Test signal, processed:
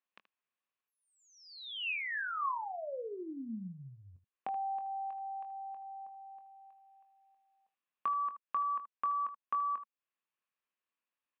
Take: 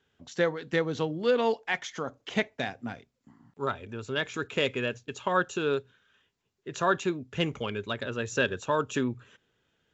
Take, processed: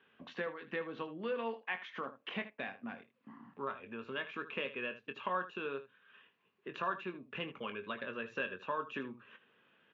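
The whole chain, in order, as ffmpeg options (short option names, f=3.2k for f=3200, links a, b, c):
-filter_complex "[0:a]acompressor=threshold=-49dB:ratio=2.5,highpass=200,equalizer=f=210:t=q:w=4:g=6,equalizer=f=530:t=q:w=4:g=3,equalizer=f=1.1k:t=q:w=4:g=10,equalizer=f=1.7k:t=q:w=4:g=5,equalizer=f=2.6k:t=q:w=4:g=8,lowpass=f=3.4k:w=0.5412,lowpass=f=3.4k:w=1.3066,asplit=2[a][b];[b]aecho=0:1:22|78:0.335|0.2[c];[a][c]amix=inputs=2:normalize=0,volume=1dB"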